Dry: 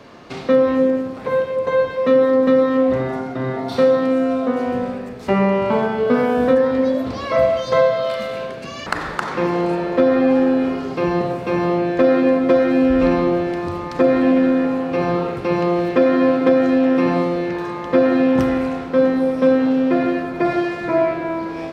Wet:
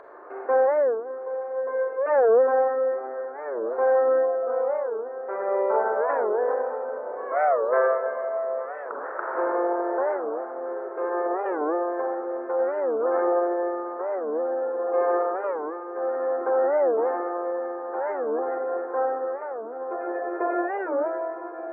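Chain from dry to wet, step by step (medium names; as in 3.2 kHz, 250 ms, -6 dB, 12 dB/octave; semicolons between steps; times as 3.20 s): one-sided wavefolder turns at -13 dBFS; spectral gate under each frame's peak -25 dB strong; elliptic band-pass 380–1600 Hz, stop band 40 dB; upward compressor, threshold -34 dBFS; tremolo triangle 0.55 Hz, depth 85%; echo that smears into a reverb 961 ms, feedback 68%, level -13 dB; reverberation RT60 1.5 s, pre-delay 30 ms, DRR 0.5 dB; warped record 45 rpm, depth 250 cents; trim -3.5 dB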